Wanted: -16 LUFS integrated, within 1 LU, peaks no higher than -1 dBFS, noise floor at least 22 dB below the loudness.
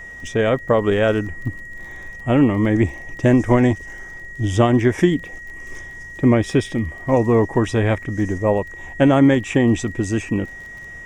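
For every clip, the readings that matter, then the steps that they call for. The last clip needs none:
ticks 23/s; steady tone 1900 Hz; tone level -34 dBFS; loudness -18.5 LUFS; peak -3.0 dBFS; loudness target -16.0 LUFS
-> de-click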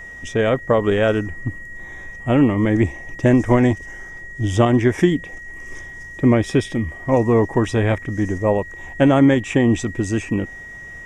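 ticks 0/s; steady tone 1900 Hz; tone level -34 dBFS
-> notch 1900 Hz, Q 30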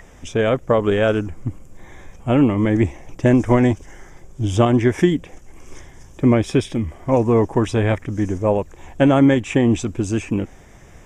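steady tone none; loudness -18.5 LUFS; peak -2.5 dBFS; loudness target -16.0 LUFS
-> gain +2.5 dB; limiter -1 dBFS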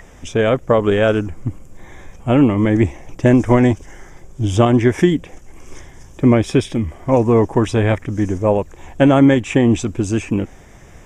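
loudness -16.0 LUFS; peak -1.0 dBFS; noise floor -42 dBFS

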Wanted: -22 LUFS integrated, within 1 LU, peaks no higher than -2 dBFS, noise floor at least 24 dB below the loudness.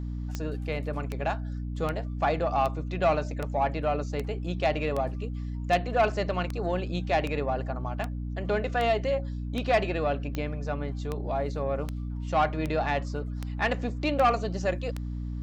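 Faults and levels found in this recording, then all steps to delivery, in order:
clicks 20; hum 60 Hz; harmonics up to 300 Hz; hum level -31 dBFS; loudness -29.5 LUFS; peak -14.0 dBFS; loudness target -22.0 LUFS
-> de-click; de-hum 60 Hz, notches 5; gain +7.5 dB

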